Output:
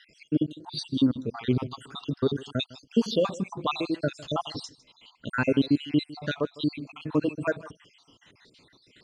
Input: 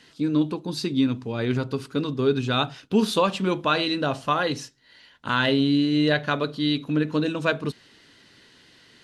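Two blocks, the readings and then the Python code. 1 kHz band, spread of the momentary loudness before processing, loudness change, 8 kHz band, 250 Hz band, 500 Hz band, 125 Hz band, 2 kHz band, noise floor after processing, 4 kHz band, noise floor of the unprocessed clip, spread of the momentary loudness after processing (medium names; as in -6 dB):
-8.5 dB, 7 LU, -5.0 dB, -6.5 dB, -4.0 dB, -4.5 dB, -4.5 dB, -8.0 dB, -64 dBFS, -7.0 dB, -55 dBFS, 12 LU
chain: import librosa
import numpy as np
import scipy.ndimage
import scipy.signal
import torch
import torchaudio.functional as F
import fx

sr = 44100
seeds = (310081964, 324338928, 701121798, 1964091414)

p1 = fx.spec_dropout(x, sr, seeds[0], share_pct=68)
p2 = scipy.signal.sosfilt(scipy.signal.butter(4, 8400.0, 'lowpass', fs=sr, output='sos'), p1)
p3 = fx.dynamic_eq(p2, sr, hz=1800.0, q=0.81, threshold_db=-42.0, ratio=4.0, max_db=-7)
p4 = fx.rider(p3, sr, range_db=10, speed_s=2.0)
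y = p4 + fx.echo_single(p4, sr, ms=155, db=-19.5, dry=0)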